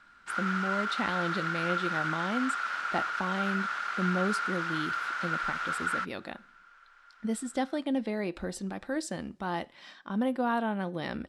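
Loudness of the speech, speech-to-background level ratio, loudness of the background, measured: -34.0 LUFS, -2.0 dB, -32.0 LUFS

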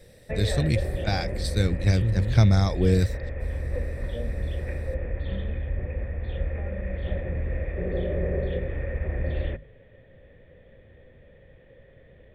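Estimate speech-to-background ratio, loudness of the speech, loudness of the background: 7.5 dB, -24.0 LUFS, -31.5 LUFS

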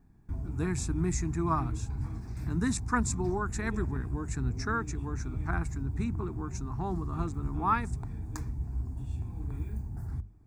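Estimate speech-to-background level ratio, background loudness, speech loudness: 3.5 dB, -37.5 LUFS, -34.0 LUFS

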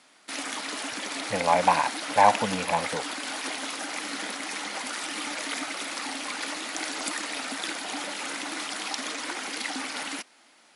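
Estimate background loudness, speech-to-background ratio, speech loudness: -31.5 LUFS, 7.0 dB, -24.5 LUFS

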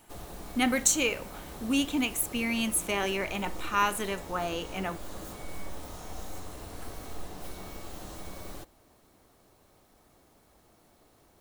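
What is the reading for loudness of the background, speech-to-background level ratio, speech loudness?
-43.5 LUFS, 14.5 dB, -29.0 LUFS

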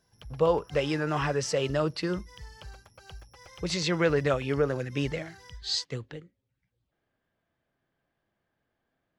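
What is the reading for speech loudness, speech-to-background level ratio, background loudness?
-29.0 LUFS, 19.5 dB, -48.5 LUFS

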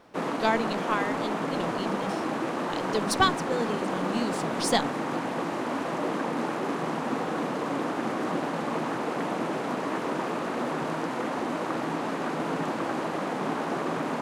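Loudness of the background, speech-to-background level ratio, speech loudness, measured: -30.0 LUFS, 0.0 dB, -30.0 LUFS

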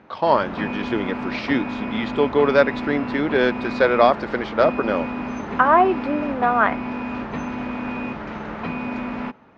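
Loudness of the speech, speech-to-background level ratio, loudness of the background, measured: -20.5 LUFS, 8.5 dB, -29.0 LUFS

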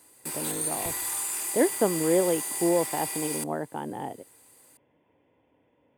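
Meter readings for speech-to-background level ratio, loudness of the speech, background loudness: 1.0 dB, -29.0 LUFS, -30.0 LUFS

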